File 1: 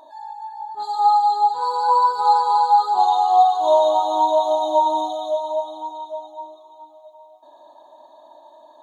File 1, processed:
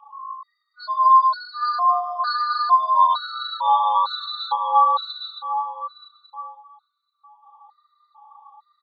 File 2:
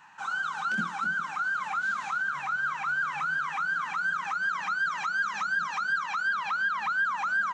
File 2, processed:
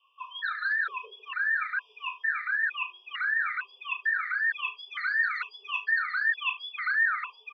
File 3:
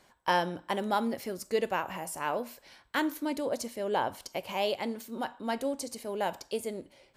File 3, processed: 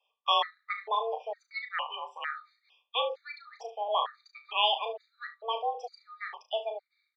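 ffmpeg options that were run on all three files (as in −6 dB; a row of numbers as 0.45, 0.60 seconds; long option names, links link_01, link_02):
-filter_complex "[0:a]afftdn=noise_reduction=17:noise_floor=-38,highpass=frequency=260:width_type=q:width=0.5412,highpass=frequency=260:width_type=q:width=1.307,lowpass=frequency=3600:width_type=q:width=0.5176,lowpass=frequency=3600:width_type=q:width=0.7071,lowpass=frequency=3600:width_type=q:width=1.932,afreqshift=220,acrossover=split=690|1200[link_01][link_02][link_03];[link_03]aexciter=amount=5:drive=1.8:freq=2300[link_04];[link_01][link_02][link_04]amix=inputs=3:normalize=0,aecho=1:1:35|73:0.398|0.168,afftfilt=real='re*gt(sin(2*PI*1.1*pts/sr)*(1-2*mod(floor(b*sr/1024/1200),2)),0)':imag='im*gt(sin(2*PI*1.1*pts/sr)*(1-2*mod(floor(b*sr/1024/1200),2)),0)':win_size=1024:overlap=0.75,volume=1dB"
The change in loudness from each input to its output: −2.0, 0.0, +0.5 LU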